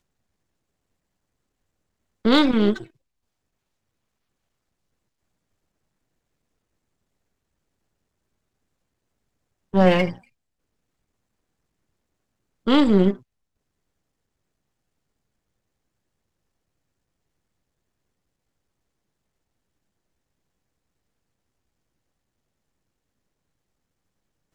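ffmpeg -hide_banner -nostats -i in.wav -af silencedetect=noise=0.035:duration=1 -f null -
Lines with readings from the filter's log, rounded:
silence_start: 0.00
silence_end: 2.25 | silence_duration: 2.25
silence_start: 2.84
silence_end: 9.74 | silence_duration: 6.90
silence_start: 10.12
silence_end: 12.67 | silence_duration: 2.55
silence_start: 13.13
silence_end: 24.54 | silence_duration: 11.41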